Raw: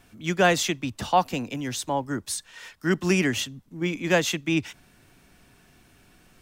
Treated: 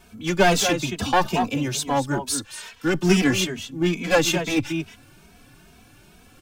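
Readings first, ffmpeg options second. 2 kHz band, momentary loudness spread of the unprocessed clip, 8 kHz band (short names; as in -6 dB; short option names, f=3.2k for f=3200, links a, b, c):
+2.5 dB, 10 LU, +4.5 dB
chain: -filter_complex "[0:a]bandreject=f=1.9k:w=9.2,asplit=2[a][b];[b]adelay=227.4,volume=-9dB,highshelf=f=4k:g=-5.12[c];[a][c]amix=inputs=2:normalize=0,aeval=exprs='clip(val(0),-1,0.0708)':c=same,asplit=2[d][e];[e]adelay=2.8,afreqshift=2.3[f];[d][f]amix=inputs=2:normalize=1,volume=8dB"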